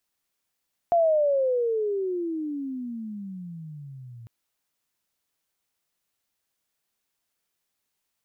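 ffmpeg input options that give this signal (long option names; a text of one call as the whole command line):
ffmpeg -f lavfi -i "aevalsrc='pow(10,(-16.5-24*t/3.35)/20)*sin(2*PI*697*3.35/(-31.5*log(2)/12)*(exp(-31.5*log(2)/12*t/3.35)-1))':duration=3.35:sample_rate=44100" out.wav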